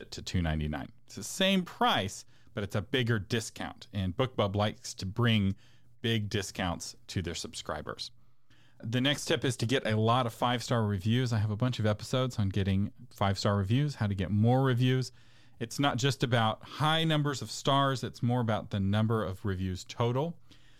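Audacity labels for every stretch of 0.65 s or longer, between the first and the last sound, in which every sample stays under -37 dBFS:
8.070000	8.840000	silence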